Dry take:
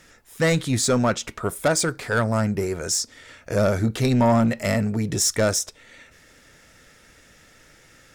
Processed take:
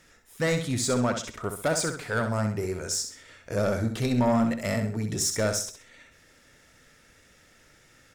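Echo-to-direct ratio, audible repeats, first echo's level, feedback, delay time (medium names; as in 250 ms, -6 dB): -7.0 dB, 3, -7.5 dB, 33%, 65 ms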